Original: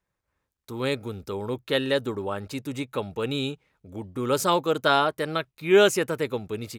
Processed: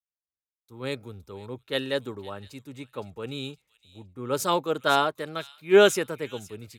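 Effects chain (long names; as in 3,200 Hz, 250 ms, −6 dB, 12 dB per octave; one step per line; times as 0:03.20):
delay with a high-pass on its return 515 ms, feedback 31%, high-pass 3,000 Hz, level −9 dB
multiband upward and downward expander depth 70%
level −4.5 dB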